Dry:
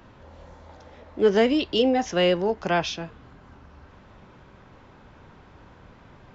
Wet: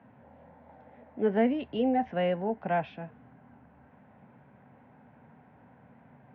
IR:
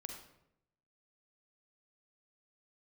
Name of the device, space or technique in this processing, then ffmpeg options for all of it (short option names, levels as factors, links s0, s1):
bass cabinet: -filter_complex "[0:a]highpass=f=89:w=0.5412,highpass=f=89:w=1.3066,equalizer=f=92:t=q:w=4:g=-7,equalizer=f=140:t=q:w=4:g=4,equalizer=f=240:t=q:w=4:g=8,equalizer=f=350:t=q:w=4:g=-9,equalizer=f=750:t=q:w=4:g=6,equalizer=f=1200:t=q:w=4:g=-9,lowpass=f=2200:w=0.5412,lowpass=f=2200:w=1.3066,asettb=1/sr,asplit=3[s0][s1][s2];[s0]atrim=end=1.244[s3];[s1]atrim=start=1.24:end=2.11,asetpts=PTS-STARTPTS,afade=t=in:d=0.004:c=qsin,afade=t=out:st=0.866:d=0.004:c=qsin,asubboost=boost=11:cutoff=120[s4];[s2]atrim=start=2.106[s5];[s3][s4]acrossfade=d=0.004:c1=hsin:c2=qsin[s6];[s6][s5]acrossfade=d=0.004:c1=qsin:c2=hsin,volume=0.473"